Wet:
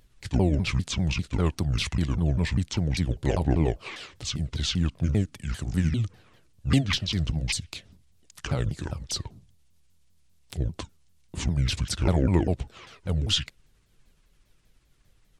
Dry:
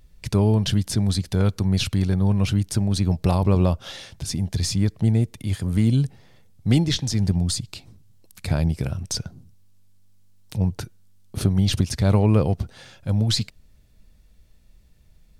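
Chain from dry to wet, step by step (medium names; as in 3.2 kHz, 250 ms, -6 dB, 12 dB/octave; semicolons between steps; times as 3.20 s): sawtooth pitch modulation -10 st, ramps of 198 ms; bass shelf 110 Hz -8.5 dB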